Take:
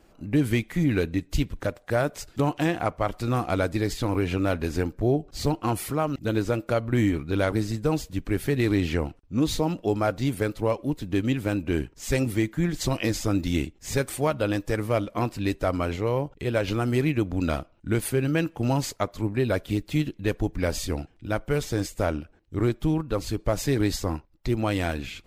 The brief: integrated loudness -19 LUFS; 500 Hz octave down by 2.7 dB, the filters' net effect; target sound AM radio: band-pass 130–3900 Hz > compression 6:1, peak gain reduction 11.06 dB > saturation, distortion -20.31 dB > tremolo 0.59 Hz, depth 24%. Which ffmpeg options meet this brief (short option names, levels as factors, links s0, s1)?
-af "highpass=130,lowpass=3900,equalizer=f=500:t=o:g=-3.5,acompressor=threshold=0.0316:ratio=6,asoftclip=threshold=0.0668,tremolo=f=0.59:d=0.24,volume=8.91"